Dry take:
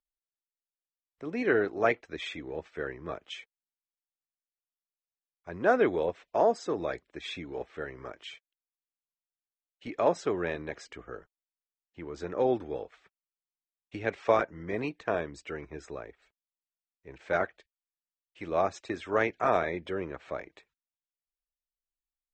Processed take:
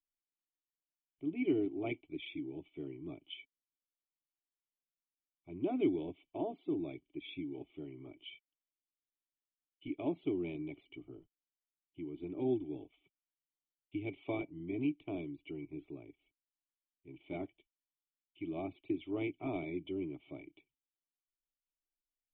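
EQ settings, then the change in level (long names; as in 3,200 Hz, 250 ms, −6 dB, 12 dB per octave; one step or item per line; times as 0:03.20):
formant resonators in series i
parametric band 220 Hz −7 dB 1.1 octaves
phaser with its sweep stopped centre 330 Hz, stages 8
+11.5 dB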